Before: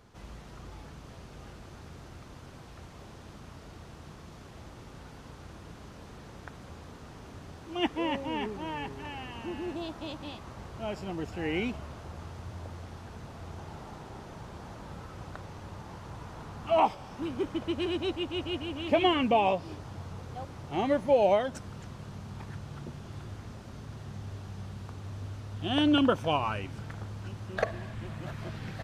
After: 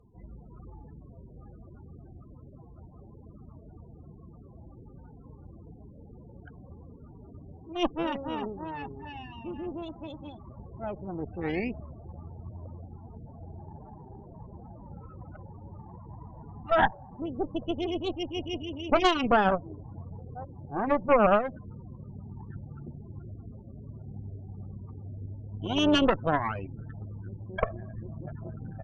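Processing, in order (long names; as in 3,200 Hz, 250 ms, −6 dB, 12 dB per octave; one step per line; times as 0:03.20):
spectral peaks only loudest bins 16
harmonic generator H 4 −8 dB, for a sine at −13 dBFS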